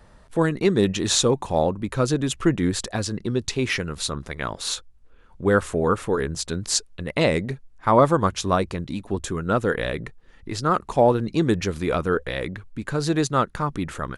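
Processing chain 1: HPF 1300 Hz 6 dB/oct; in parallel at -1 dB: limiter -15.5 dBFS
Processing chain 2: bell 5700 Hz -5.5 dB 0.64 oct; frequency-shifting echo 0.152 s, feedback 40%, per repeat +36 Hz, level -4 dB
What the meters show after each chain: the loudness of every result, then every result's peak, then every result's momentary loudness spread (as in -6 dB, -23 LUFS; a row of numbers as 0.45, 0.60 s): -24.5, -22.0 LUFS; -2.5, -3.0 dBFS; 10, 10 LU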